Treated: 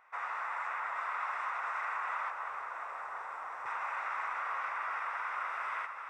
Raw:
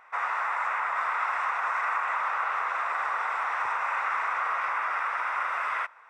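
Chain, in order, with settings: 2.30–3.66 s: peaking EQ 2.8 kHz -12 dB 2.2 oct; echo whose repeats swap between lows and highs 175 ms, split 1.5 kHz, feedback 88%, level -9 dB; trim -9 dB

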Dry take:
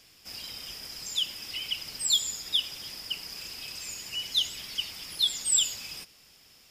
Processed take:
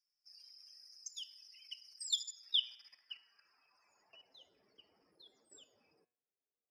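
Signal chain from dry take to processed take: expander on every frequency bin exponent 2; band-pass sweep 6.1 kHz -> 440 Hz, 1.97–4.64 s; level held to a coarse grid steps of 15 dB; de-hum 121.7 Hz, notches 34; trim +1 dB

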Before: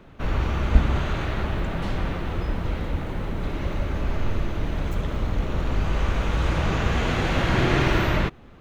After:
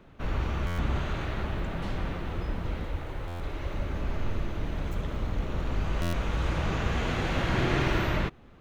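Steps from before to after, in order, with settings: 2.84–3.74 s: peaking EQ 200 Hz -13 dB 0.62 oct; buffer glitch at 0.66/3.27/6.01 s, samples 512, times 10; trim -5.5 dB

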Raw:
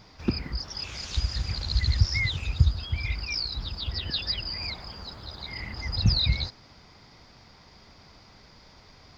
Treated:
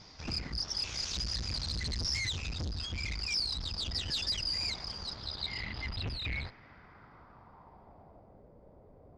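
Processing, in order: valve stage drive 34 dB, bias 0.65; low-pass sweep 6 kHz -> 550 Hz, 5.02–8.44 s

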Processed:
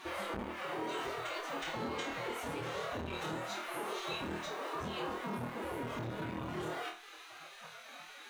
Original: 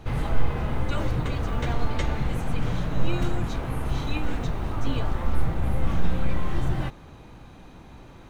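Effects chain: spectral gate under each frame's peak -20 dB weak; compression 2.5:1, threshold -47 dBFS, peak gain reduction 13.5 dB; formant-preserving pitch shift +10.5 st; on a send: flutter echo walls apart 4.3 m, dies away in 0.34 s; on the sum: transformer saturation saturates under 620 Hz; trim +6 dB

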